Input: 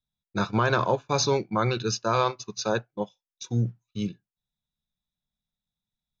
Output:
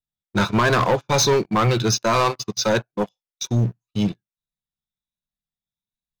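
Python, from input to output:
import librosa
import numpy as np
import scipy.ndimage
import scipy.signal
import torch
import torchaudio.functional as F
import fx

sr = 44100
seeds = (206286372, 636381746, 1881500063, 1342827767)

y = fx.spec_ripple(x, sr, per_octave=1.5, drift_hz=1.3, depth_db=6)
y = fx.leveller(y, sr, passes=3)
y = y * librosa.db_to_amplitude(-1.5)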